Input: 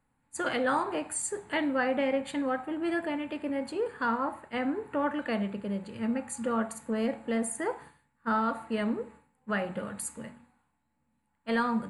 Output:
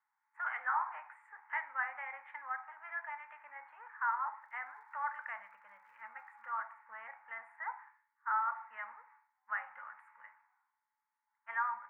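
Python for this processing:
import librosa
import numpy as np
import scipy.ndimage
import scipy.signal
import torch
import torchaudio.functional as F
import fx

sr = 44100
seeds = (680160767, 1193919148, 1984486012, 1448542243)

y = scipy.signal.sosfilt(scipy.signal.ellip(3, 1.0, 50, [870.0, 2100.0], 'bandpass', fs=sr, output='sos'), x)
y = fx.dmg_crackle(y, sr, seeds[0], per_s=120.0, level_db=-66.0, at=(4.41, 6.58), fade=0.02)
y = y * librosa.db_to_amplitude(-3.0)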